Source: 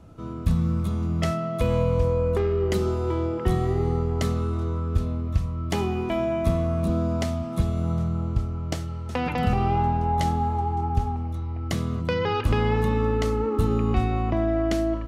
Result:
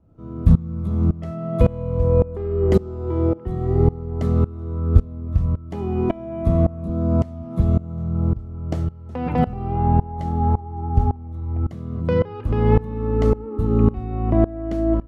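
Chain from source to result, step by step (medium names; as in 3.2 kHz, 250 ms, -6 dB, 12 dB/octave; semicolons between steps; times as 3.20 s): tilt shelf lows +9 dB, about 1.4 kHz; sawtooth tremolo in dB swelling 1.8 Hz, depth 22 dB; trim +2.5 dB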